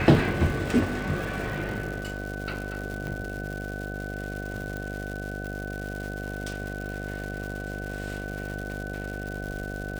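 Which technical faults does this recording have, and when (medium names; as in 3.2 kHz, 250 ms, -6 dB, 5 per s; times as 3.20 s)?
buzz 50 Hz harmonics 15 -35 dBFS
crackle 250 per s -33 dBFS
whine 1.5 kHz -37 dBFS
3.07 s: pop -21 dBFS
4.77 s: pop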